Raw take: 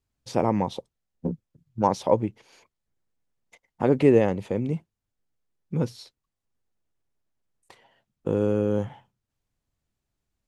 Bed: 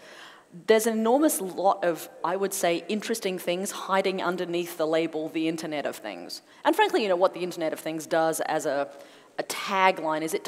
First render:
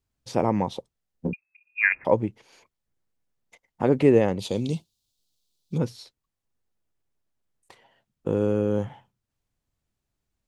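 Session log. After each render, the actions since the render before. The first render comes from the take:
0:01.33–0:02.05: voice inversion scrambler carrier 2,600 Hz
0:04.39–0:05.78: high shelf with overshoot 2,700 Hz +13 dB, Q 3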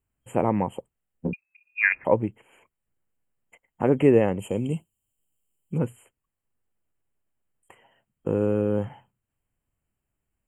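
brick-wall band-stop 3,200–6,900 Hz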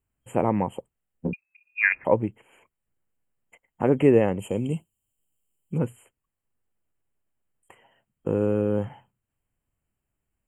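no processing that can be heard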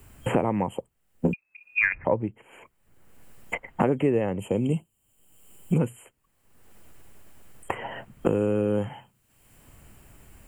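multiband upward and downward compressor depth 100%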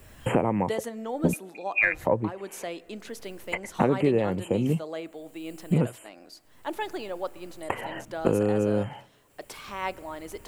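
mix in bed −11 dB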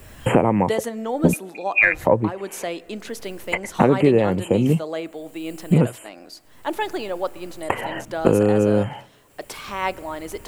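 level +7 dB
brickwall limiter −1 dBFS, peak gain reduction 0.5 dB

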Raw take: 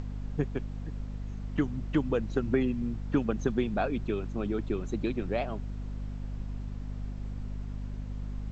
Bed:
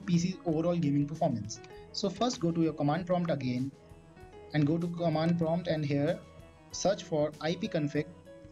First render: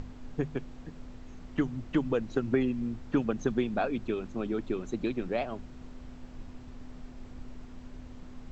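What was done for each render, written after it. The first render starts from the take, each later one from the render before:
mains-hum notches 50/100/150/200 Hz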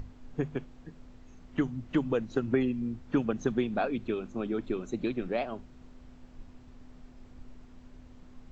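noise reduction from a noise print 6 dB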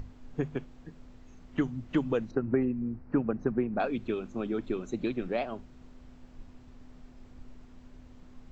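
0:02.31–0:03.80: moving average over 13 samples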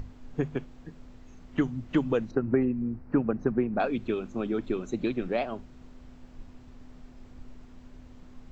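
level +2.5 dB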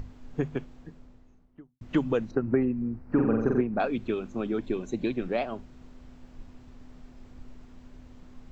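0:00.60–0:01.81: fade out and dull
0:03.05–0:03.61: flutter between parallel walls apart 7.7 metres, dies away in 0.88 s
0:04.60–0:05.18: Butterworth band-reject 1,300 Hz, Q 5.5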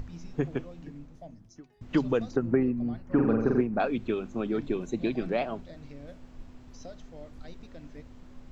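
mix in bed −17.5 dB

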